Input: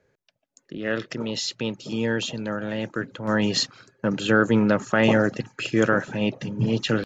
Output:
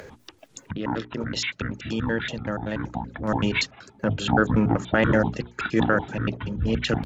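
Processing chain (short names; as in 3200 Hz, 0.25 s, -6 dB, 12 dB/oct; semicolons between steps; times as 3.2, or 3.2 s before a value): trilling pitch shifter -11 st, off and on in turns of 95 ms; upward compressor, threshold -24 dBFS; notches 60/120/180/240/300/360/420 Hz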